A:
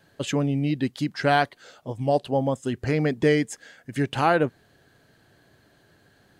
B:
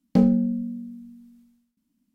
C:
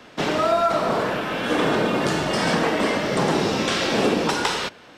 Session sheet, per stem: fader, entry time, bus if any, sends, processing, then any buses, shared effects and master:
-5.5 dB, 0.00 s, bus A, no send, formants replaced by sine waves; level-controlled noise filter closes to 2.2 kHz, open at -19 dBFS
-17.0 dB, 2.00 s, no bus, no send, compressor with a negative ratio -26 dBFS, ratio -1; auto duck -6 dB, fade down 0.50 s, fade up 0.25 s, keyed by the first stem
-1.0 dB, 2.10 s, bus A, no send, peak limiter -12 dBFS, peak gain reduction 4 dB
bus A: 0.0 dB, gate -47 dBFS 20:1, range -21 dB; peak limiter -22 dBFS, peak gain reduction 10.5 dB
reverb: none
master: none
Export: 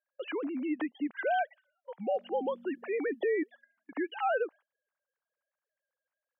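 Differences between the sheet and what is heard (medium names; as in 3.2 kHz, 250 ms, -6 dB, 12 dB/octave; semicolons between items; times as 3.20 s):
stem C: muted; master: extra high-pass 300 Hz 12 dB/octave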